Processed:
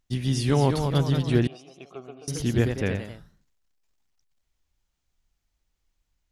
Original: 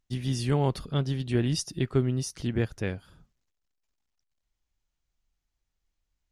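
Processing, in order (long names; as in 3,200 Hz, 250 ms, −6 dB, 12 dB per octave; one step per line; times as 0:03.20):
delay with pitch and tempo change per echo 237 ms, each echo +1 semitone, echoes 3, each echo −6 dB
0:01.47–0:02.28: formant filter a
level +4 dB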